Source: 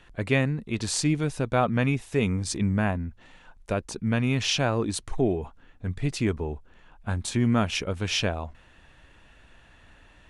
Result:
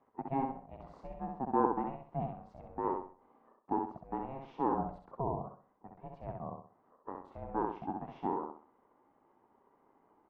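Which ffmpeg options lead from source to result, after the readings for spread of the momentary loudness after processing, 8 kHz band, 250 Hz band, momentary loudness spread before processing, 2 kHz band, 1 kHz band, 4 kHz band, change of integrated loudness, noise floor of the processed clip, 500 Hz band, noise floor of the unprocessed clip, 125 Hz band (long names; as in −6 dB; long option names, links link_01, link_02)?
18 LU, below −40 dB, −12.5 dB, 11 LU, −25.0 dB, −1.0 dB, below −35 dB, −11.0 dB, −71 dBFS, −10.0 dB, −56 dBFS, −19.5 dB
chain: -af "asuperpass=centerf=630:order=4:qfactor=1.8,aeval=exprs='val(0)*sin(2*PI*270*n/s)':channel_layout=same,aecho=1:1:65|130|195|260:0.631|0.208|0.0687|0.0227"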